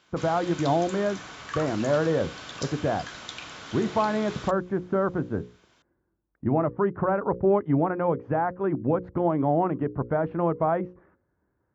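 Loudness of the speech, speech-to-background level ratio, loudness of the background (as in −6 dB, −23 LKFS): −26.5 LKFS, 12.5 dB, −39.0 LKFS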